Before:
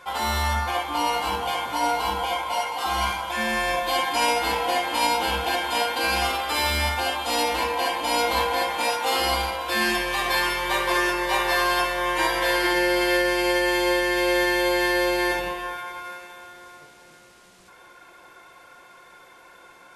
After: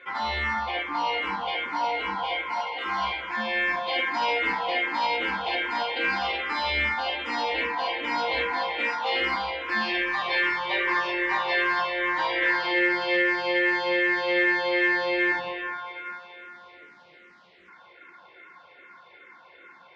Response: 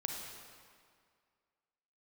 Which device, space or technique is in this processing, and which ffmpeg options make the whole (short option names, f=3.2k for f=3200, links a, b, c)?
barber-pole phaser into a guitar amplifier: -filter_complex "[0:a]asplit=2[a][b];[b]afreqshift=-2.5[c];[a][c]amix=inputs=2:normalize=1,asoftclip=type=tanh:threshold=-16.5dB,highpass=100,equalizer=f=120:t=q:w=4:g=-10,equalizer=f=700:t=q:w=4:g=-3,equalizer=f=2k:t=q:w=4:g=9,lowpass=f=4.1k:w=0.5412,lowpass=f=4.1k:w=1.3066"